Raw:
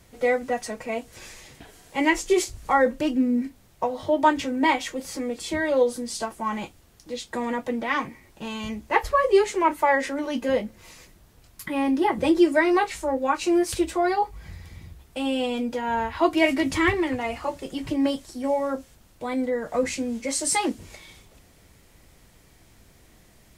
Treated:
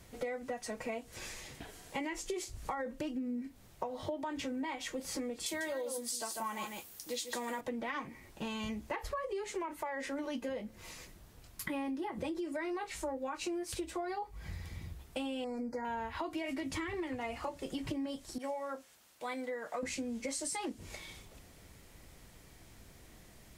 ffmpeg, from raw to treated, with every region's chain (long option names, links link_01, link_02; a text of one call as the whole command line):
ffmpeg -i in.wav -filter_complex "[0:a]asettb=1/sr,asplit=3[link_01][link_02][link_03];[link_01]atrim=end=5.464[link_04];[link_02]atrim=start=5.46:end=7.61,asetpts=PTS-STARTPTS,afade=type=in:duration=0.004:curve=qsin,afade=type=out:start_time=2.146:duration=0.004:curve=qsin,aemphasis=mode=production:type=bsi,aecho=1:1:146:0.398,atrim=end_sample=94815[link_05];[link_03]atrim=start=7.606[link_06];[link_04][link_05]acrossfade=duration=0.004:curve1=hsin:curve2=qsin[link_07];[link_07][link_06]acrossfade=duration=0.004:curve1=qsin:curve2=hsin,asettb=1/sr,asplit=3[link_08][link_09][link_10];[link_08]atrim=end=15.444[link_11];[link_09]atrim=start=15.44:end=15.85,asetpts=PTS-STARTPTS,afade=type=in:duration=0.004:curve=qsin,afade=type=out:start_time=0.406:duration=0.004:curve=qsin,asuperstop=centerf=3100:order=12:qfactor=1.5,highshelf=frequency=6600:gain=-9[link_12];[link_10]atrim=start=15.846[link_13];[link_11][link_12]acrossfade=duration=0.004:curve1=hsin:curve2=qsin[link_14];[link_14][link_13]acrossfade=duration=0.004:curve1=qsin:curve2=hsin,asettb=1/sr,asplit=3[link_15][link_16][link_17];[link_15]atrim=end=18.384[link_18];[link_16]atrim=start=18.38:end=19.83,asetpts=PTS-STARTPTS,afade=type=in:duration=0.004:curve=qsin,afade=type=out:start_time=1.446:duration=0.004:curve=qsin,highpass=frequency=1100:poles=1,adynamicequalizer=threshold=0.00282:dfrequency=2600:dqfactor=0.7:tfrequency=2600:tqfactor=0.7:attack=5:release=100:ratio=0.375:range=3:mode=cutabove:tftype=highshelf[link_19];[link_17]atrim=start=19.826[link_20];[link_18][link_19]acrossfade=duration=0.004:curve1=hsin:curve2=qsin[link_21];[link_21][link_20]acrossfade=duration=0.004:curve1=qsin:curve2=hsin,alimiter=limit=-16dB:level=0:latency=1:release=61,acompressor=threshold=-33dB:ratio=12,volume=-2dB" out.wav